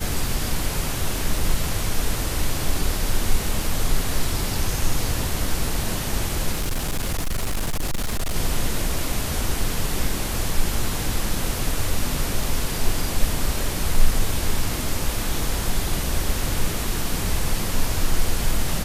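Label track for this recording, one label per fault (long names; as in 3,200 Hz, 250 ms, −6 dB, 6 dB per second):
6.520000	8.360000	clipping −19.5 dBFS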